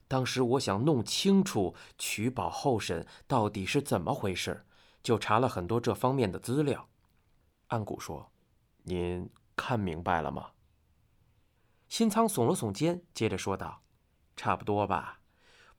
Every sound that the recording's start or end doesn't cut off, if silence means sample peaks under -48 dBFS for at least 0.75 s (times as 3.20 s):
7.71–10.49 s